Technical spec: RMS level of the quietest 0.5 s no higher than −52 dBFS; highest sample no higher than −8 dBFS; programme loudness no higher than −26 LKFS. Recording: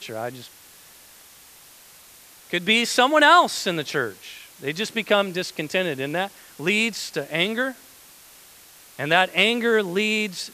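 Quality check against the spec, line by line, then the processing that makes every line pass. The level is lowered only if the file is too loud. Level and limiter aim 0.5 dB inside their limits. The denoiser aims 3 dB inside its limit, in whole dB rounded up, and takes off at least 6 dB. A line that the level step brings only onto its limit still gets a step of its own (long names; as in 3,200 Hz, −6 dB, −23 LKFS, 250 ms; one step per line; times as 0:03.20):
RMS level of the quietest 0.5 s −49 dBFS: out of spec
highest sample −3.5 dBFS: out of spec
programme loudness −21.5 LKFS: out of spec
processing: level −5 dB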